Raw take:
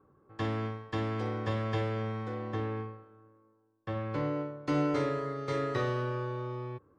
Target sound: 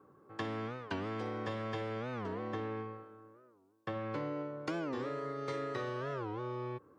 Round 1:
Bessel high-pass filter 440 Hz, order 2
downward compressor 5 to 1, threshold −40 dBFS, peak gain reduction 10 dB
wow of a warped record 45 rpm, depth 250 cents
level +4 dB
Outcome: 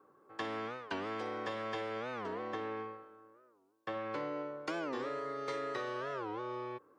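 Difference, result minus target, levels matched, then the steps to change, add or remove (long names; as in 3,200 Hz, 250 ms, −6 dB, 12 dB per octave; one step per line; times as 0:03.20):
125 Hz band −10.5 dB
change: Bessel high-pass filter 170 Hz, order 2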